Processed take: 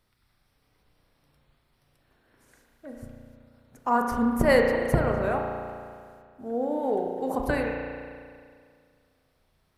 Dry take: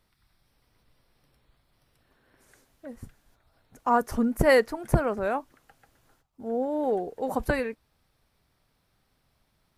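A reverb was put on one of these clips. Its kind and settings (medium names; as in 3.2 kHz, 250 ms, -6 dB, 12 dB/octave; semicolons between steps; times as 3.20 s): spring tank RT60 2.1 s, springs 34 ms, chirp 30 ms, DRR 1.5 dB; trim -1.5 dB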